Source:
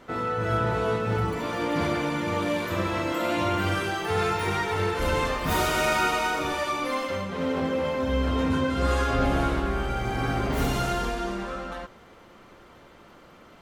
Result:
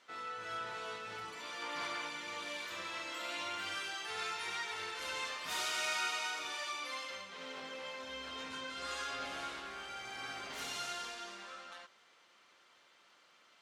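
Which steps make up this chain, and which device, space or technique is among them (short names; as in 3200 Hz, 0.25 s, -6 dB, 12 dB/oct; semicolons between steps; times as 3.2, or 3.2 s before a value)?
1.62–2.08 bell 1100 Hz +5.5 dB 1.1 oct; piezo pickup straight into a mixer (LPF 5200 Hz 12 dB/oct; differentiator); gain +1.5 dB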